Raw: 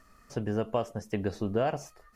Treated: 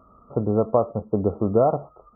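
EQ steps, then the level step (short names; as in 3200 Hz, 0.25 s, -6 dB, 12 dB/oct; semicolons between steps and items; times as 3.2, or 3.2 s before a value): HPF 52 Hz; brick-wall FIR low-pass 1400 Hz; bell 520 Hz +3 dB 0.66 oct; +8.0 dB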